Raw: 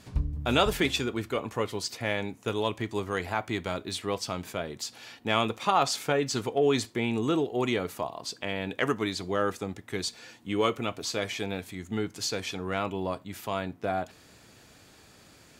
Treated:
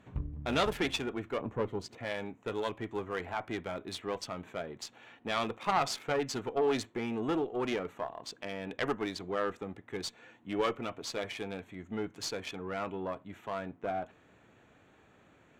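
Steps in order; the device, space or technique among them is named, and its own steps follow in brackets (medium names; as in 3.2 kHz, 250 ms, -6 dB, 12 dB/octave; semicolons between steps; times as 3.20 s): local Wiener filter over 9 samples; 1.41–1.98 s: tilt shelf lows +7.5 dB, about 670 Hz; tube preamp driven hard (valve stage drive 19 dB, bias 0.65; bass shelf 130 Hz -6.5 dB; treble shelf 6.9 kHz -5.5 dB)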